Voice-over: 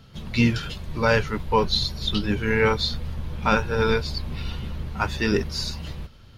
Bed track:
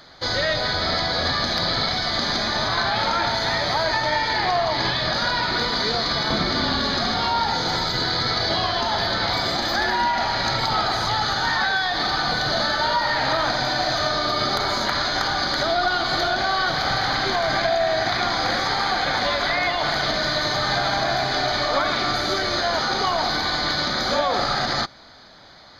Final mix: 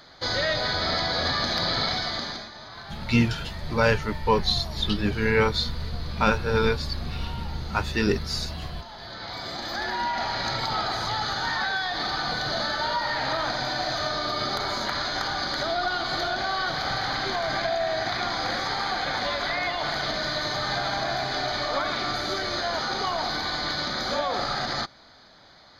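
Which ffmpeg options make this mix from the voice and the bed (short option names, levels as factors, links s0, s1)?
-filter_complex "[0:a]adelay=2750,volume=0.891[s0];[1:a]volume=3.55,afade=t=out:st=1.92:d=0.58:silence=0.149624,afade=t=in:st=8.97:d=1.24:silence=0.199526[s1];[s0][s1]amix=inputs=2:normalize=0"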